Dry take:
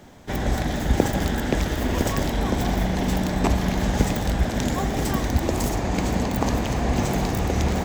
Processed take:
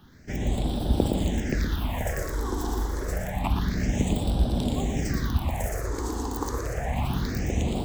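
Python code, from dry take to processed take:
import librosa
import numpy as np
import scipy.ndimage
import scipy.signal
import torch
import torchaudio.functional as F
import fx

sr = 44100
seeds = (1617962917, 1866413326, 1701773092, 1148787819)

p1 = x + fx.echo_single(x, sr, ms=117, db=-5.0, dry=0)
p2 = fx.phaser_stages(p1, sr, stages=6, low_hz=160.0, high_hz=1900.0, hz=0.28, feedback_pct=25)
y = F.gain(torch.from_numpy(p2), -4.0).numpy()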